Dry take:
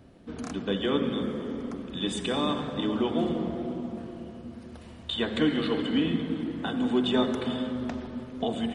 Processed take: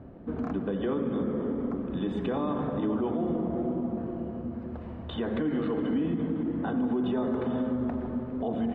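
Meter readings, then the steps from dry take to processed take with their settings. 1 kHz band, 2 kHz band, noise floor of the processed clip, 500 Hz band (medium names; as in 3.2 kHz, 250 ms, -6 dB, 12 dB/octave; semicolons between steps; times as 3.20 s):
-2.0 dB, -7.5 dB, -39 dBFS, -1.0 dB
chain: low-pass 1.2 kHz 12 dB/octave; in parallel at +2 dB: compression, threshold -38 dBFS, peak gain reduction 17 dB; on the sum: peak limiter -21 dBFS, peak gain reduction 9 dB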